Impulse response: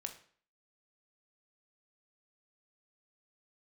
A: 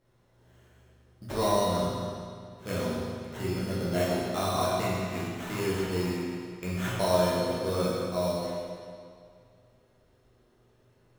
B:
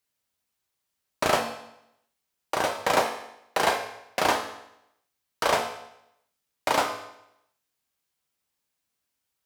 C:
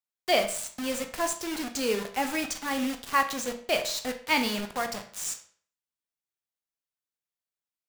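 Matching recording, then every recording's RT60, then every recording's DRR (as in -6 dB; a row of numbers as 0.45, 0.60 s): C; 2.2, 0.80, 0.50 s; -8.0, 2.5, 5.5 dB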